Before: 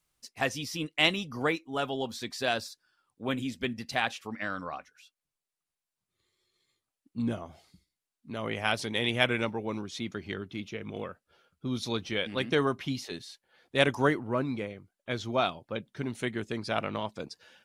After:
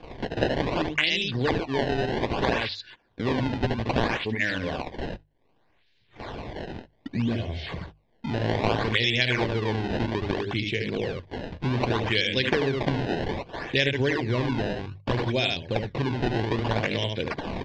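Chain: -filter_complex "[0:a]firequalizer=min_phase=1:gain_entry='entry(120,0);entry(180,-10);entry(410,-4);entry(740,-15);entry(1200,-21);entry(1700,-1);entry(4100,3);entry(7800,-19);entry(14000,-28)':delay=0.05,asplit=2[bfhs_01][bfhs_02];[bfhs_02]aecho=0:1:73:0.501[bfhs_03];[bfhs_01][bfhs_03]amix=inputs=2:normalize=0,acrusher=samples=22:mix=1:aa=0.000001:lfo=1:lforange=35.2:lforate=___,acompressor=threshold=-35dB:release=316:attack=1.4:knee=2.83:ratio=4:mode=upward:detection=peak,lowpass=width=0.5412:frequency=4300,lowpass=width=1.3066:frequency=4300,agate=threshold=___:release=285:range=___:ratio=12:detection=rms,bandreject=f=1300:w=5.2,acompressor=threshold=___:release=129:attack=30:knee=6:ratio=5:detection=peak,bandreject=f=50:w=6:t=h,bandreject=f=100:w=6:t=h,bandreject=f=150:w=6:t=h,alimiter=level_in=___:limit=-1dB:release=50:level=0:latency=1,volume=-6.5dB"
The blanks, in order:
0.63, -48dB, -26dB, -40dB, 22dB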